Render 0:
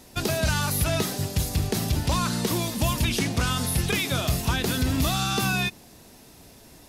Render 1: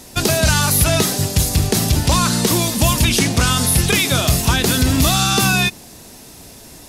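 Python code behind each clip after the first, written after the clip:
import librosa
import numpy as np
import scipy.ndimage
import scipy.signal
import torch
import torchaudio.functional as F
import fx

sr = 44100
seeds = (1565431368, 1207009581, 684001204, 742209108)

y = fx.peak_eq(x, sr, hz=8200.0, db=5.0, octaves=1.5)
y = F.gain(torch.from_numpy(y), 8.5).numpy()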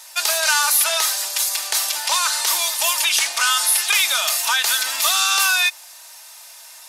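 y = scipy.signal.sosfilt(scipy.signal.butter(4, 860.0, 'highpass', fs=sr, output='sos'), x)
y = y + 0.38 * np.pad(y, (int(3.3 * sr / 1000.0), 0))[:len(y)]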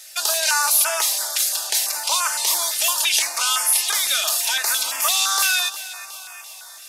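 y = fx.echo_feedback(x, sr, ms=361, feedback_pct=58, wet_db=-15)
y = fx.filter_held_notch(y, sr, hz=5.9, low_hz=980.0, high_hz=3900.0)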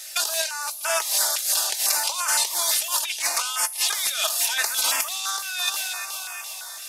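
y = fx.over_compress(x, sr, threshold_db=-24.0, ratio=-0.5)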